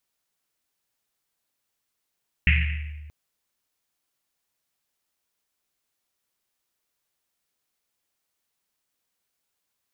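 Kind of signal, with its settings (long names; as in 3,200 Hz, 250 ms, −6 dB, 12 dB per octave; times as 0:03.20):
drum after Risset length 0.63 s, pitch 75 Hz, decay 1.67 s, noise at 2,300 Hz, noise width 1,000 Hz, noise 35%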